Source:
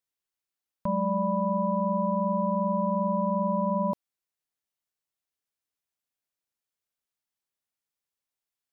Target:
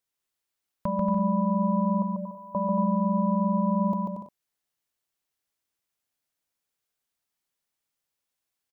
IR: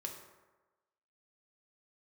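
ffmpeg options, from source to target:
-filter_complex "[0:a]asettb=1/sr,asplit=3[s0][s1][s2];[s0]atrim=end=2.024[s3];[s1]atrim=start=2.02:end=2.55,asetpts=PTS-STARTPTS,afade=t=in:d=0.004:c=qsin,afade=t=out:st=0.526:d=0.004:c=qsin,aderivative[s4];[s2]atrim=start=2.546[s5];[s3][s4]acrossfade=d=0.004:c1=hsin:c2=qsin[s6];[s6][s5]acrossfade=d=0.004:c1=qsin:c2=hsin,acompressor=threshold=0.0355:ratio=2.5,aecho=1:1:140|231|290.2|328.6|353.6:0.631|0.398|0.251|0.158|0.1,volume=1.41"

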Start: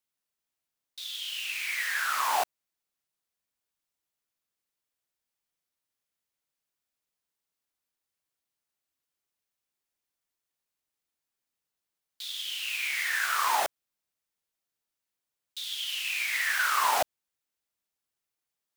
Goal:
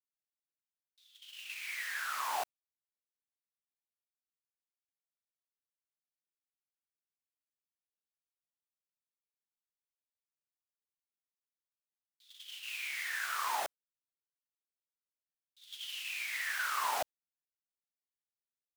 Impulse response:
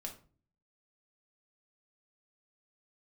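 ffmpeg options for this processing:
-af "agate=range=0.112:threshold=0.02:ratio=16:detection=peak,volume=0.376"

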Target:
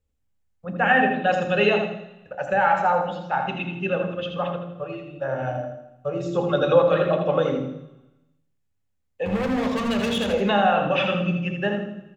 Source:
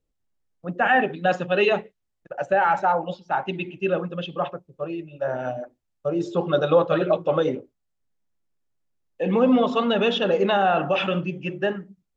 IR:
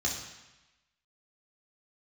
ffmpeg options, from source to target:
-filter_complex "[0:a]asettb=1/sr,asplit=3[s0][s1][s2];[s0]atrim=end=9.254[s3];[s1]atrim=start=9.25:end=10.33,asetpts=PTS-STARTPTS,afade=t=in:d=0.004:c=qsin,afade=t=out:st=1.076:d=0.004:c=qsin,asoftclip=type=hard:threshold=0.0631[s4];[s2]atrim=start=10.326[s5];[s3][s4]acrossfade=d=0.004:c1=hsin:c2=qsin[s6];[s6][s5]acrossfade=d=0.004:c1=qsin:c2=hsin,aecho=1:1:81|162|243|324:0.473|0.17|0.0613|0.0221,asplit=2[s7][s8];[1:a]atrim=start_sample=2205,lowshelf=f=300:g=12[s9];[s8][s9]afir=irnorm=-1:irlink=0,volume=0.188[s10];[s7][s10]amix=inputs=2:normalize=0"

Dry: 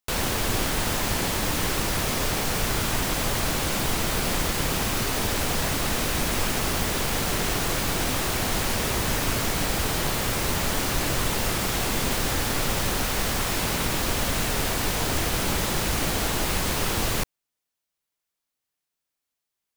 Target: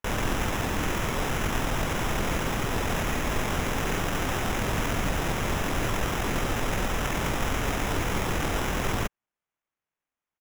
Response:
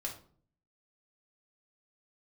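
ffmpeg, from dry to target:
-af "aresample=8000,aresample=44100,acrusher=samples=10:mix=1:aa=0.000001,atempo=1.9"

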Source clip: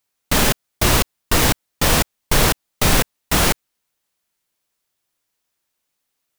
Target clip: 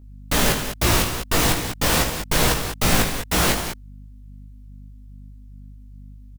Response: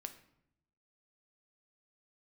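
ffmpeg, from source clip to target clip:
-af "aecho=1:1:72.89|195.3:0.316|0.355,aeval=exprs='val(0)+0.0112*(sin(2*PI*50*n/s)+sin(2*PI*2*50*n/s)/2+sin(2*PI*3*50*n/s)/3+sin(2*PI*4*50*n/s)/4+sin(2*PI*5*50*n/s)/5)':c=same,flanger=delay=16.5:depth=3.9:speed=2.4"

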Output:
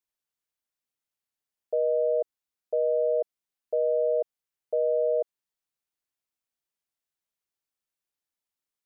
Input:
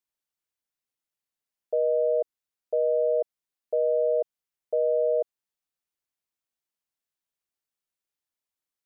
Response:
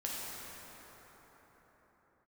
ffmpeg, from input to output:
-af "volume=0.891"

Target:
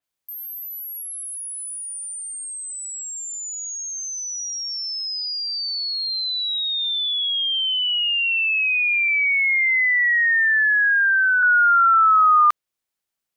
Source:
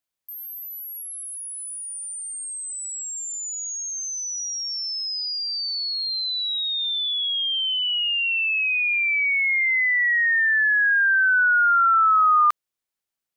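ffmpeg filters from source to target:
-filter_complex "[0:a]asettb=1/sr,asplit=3[s0][s1][s2];[s0]atrim=end=9.084[s3];[s1]atrim=start=9.08:end=11.43,asetpts=PTS-STARTPTS,afade=t=in:d=0.004:c=qsin,afade=t=out:st=2.346:d=0.004:c=qsin,highpass=f=1400:w=0.5412,highpass=f=1400:w=1.3066[s4];[s2]atrim=start=11.426[s5];[s3][s4]acrossfade=d=0.004:c1=hsin:c2=qsin[s6];[s6][s5]acrossfade=d=0.004:c1=qsin:c2=hsin,adynamicequalizer=threshold=0.0126:dfrequency=4700:dqfactor=0.7:tfrequency=4700:tqfactor=0.7:attack=5:release=100:ratio=0.375:range=1.5:mode=cutabove:tftype=highshelf,volume=1.33"

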